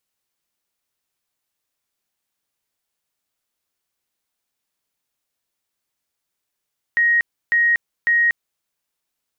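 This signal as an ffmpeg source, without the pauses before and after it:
ffmpeg -f lavfi -i "aevalsrc='0.224*sin(2*PI*1880*mod(t,0.55))*lt(mod(t,0.55),449/1880)':duration=1.65:sample_rate=44100" out.wav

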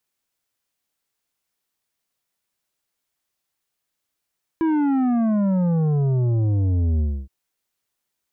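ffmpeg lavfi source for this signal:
ffmpeg -f lavfi -i "aevalsrc='0.126*clip((2.67-t)/0.28,0,1)*tanh(2.82*sin(2*PI*330*2.67/log(65/330)*(exp(log(65/330)*t/2.67)-1)))/tanh(2.82)':duration=2.67:sample_rate=44100" out.wav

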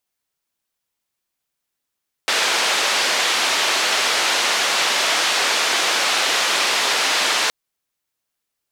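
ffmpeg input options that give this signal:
ffmpeg -f lavfi -i "anoisesrc=color=white:duration=5.22:sample_rate=44100:seed=1,highpass=frequency=470,lowpass=frequency=4500,volume=-7.1dB" out.wav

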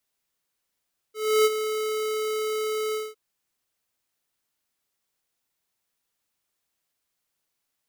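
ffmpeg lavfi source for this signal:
ffmpeg -f lavfi -i "aevalsrc='0.133*(2*lt(mod(432*t,1),0.5)-1)':duration=2.006:sample_rate=44100,afade=type=in:duration=0.312,afade=type=out:start_time=0.312:duration=0.037:silence=0.316,afade=type=out:start_time=1.8:duration=0.206" out.wav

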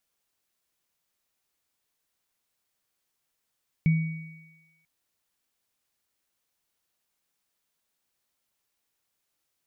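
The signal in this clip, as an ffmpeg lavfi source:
ffmpeg -f lavfi -i "aevalsrc='0.158*pow(10,-3*t/0.99)*sin(2*PI*161*t)+0.0237*pow(10,-3*t/1.63)*sin(2*PI*2250*t)':duration=0.99:sample_rate=44100" out.wav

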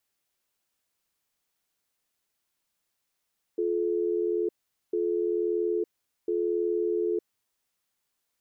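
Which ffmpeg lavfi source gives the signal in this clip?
ffmpeg -f lavfi -i "aevalsrc='0.0447*(sin(2*PI*350*t)+sin(2*PI*431*t))*clip(min(mod(t,1.35),0.91-mod(t,1.35))/0.005,0,1)':duration=3.8:sample_rate=44100" out.wav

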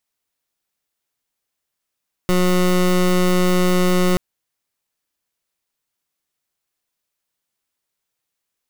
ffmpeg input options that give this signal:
ffmpeg -f lavfi -i "aevalsrc='0.168*(2*lt(mod(181*t,1),0.22)-1)':duration=1.88:sample_rate=44100" out.wav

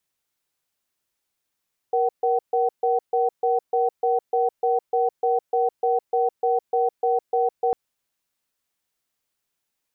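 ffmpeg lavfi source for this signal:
ffmpeg -f lavfi -i "aevalsrc='0.0944*(sin(2*PI*473*t)+sin(2*PI*757*t))*clip(min(mod(t,0.3),0.16-mod(t,0.3))/0.005,0,1)':duration=5.8:sample_rate=44100" out.wav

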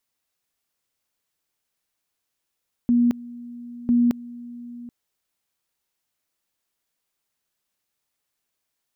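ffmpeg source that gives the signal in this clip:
ffmpeg -f lavfi -i "aevalsrc='pow(10,(-14.5-20*gte(mod(t,1),0.22))/20)*sin(2*PI*240*t)':duration=2:sample_rate=44100" out.wav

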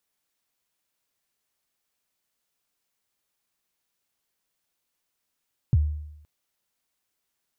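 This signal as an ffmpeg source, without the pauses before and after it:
ffmpeg -f lavfi -i "aevalsrc='0.211*pow(10,-3*t/0.83)*sin(2*PI*(150*0.037/log(75/150)*(exp(log(75/150)*min(t,0.037)/0.037)-1)+75*max(t-0.037,0)))':duration=0.52:sample_rate=44100" out.wav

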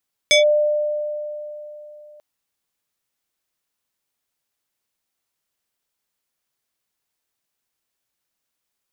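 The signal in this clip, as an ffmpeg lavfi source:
ffmpeg -f lavfi -i "aevalsrc='0.335*pow(10,-3*t/3.39)*sin(2*PI*598*t+1.9*clip(1-t/0.13,0,1)*sin(2*PI*4.79*598*t))':duration=1.89:sample_rate=44100" out.wav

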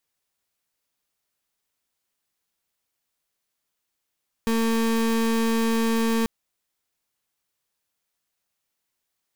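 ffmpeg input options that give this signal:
ffmpeg -f lavfi -i "aevalsrc='0.0794*(2*lt(mod(227*t,1),0.32)-1)':duration=1.79:sample_rate=44100" out.wav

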